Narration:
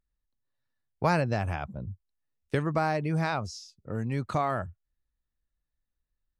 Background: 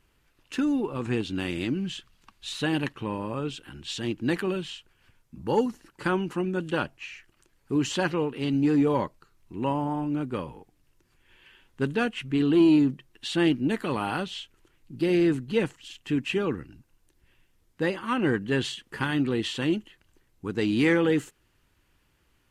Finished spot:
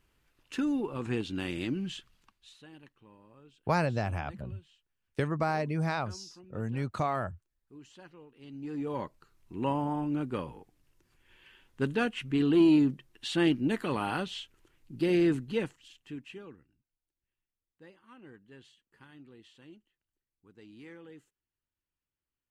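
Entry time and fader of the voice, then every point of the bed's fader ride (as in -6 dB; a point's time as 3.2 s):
2.65 s, -2.5 dB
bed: 2.17 s -4.5 dB
2.64 s -26 dB
8.26 s -26 dB
9.25 s -3 dB
15.39 s -3 dB
16.89 s -27.5 dB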